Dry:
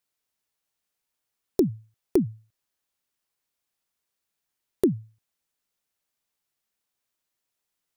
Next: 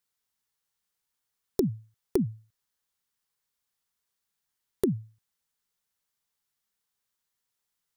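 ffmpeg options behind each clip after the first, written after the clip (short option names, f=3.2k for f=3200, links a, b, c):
-af "equalizer=f=315:t=o:w=0.33:g=-11,equalizer=f=630:t=o:w=0.33:g=-9,equalizer=f=2.5k:t=o:w=0.33:g=-4"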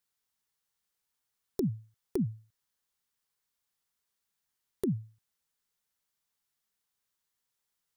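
-af "alimiter=limit=-18.5dB:level=0:latency=1:release=74,volume=-1dB"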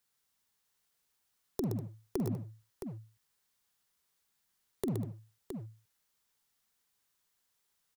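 -filter_complex "[0:a]acrossover=split=190[a][b];[a]asoftclip=type=hard:threshold=-39.5dB[c];[b]acompressor=threshold=-38dB:ratio=6[d];[c][d]amix=inputs=2:normalize=0,aecho=1:1:46|121|196|667:0.237|0.501|0.15|0.398,volume=3.5dB"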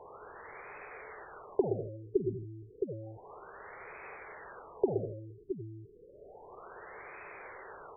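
-af "aeval=exprs='val(0)+0.5*0.0178*sgn(val(0))':c=same,lowshelf=f=320:t=q:w=3:g=-8.5,afftfilt=real='re*lt(b*sr/1024,400*pow(2600/400,0.5+0.5*sin(2*PI*0.31*pts/sr)))':imag='im*lt(b*sr/1024,400*pow(2600/400,0.5+0.5*sin(2*PI*0.31*pts/sr)))':win_size=1024:overlap=0.75,volume=3dB"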